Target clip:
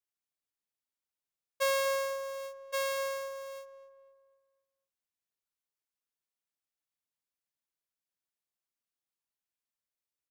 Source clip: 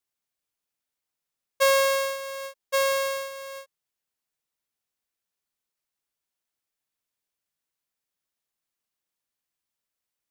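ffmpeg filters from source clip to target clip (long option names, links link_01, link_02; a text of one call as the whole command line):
ffmpeg -i in.wav -filter_complex "[0:a]asplit=2[link_01][link_02];[link_02]adelay=248,lowpass=frequency=1800:poles=1,volume=-12dB,asplit=2[link_03][link_04];[link_04]adelay=248,lowpass=frequency=1800:poles=1,volume=0.48,asplit=2[link_05][link_06];[link_06]adelay=248,lowpass=frequency=1800:poles=1,volume=0.48,asplit=2[link_07][link_08];[link_08]adelay=248,lowpass=frequency=1800:poles=1,volume=0.48,asplit=2[link_09][link_10];[link_10]adelay=248,lowpass=frequency=1800:poles=1,volume=0.48[link_11];[link_01][link_03][link_05][link_07][link_09][link_11]amix=inputs=6:normalize=0,volume=-9dB" out.wav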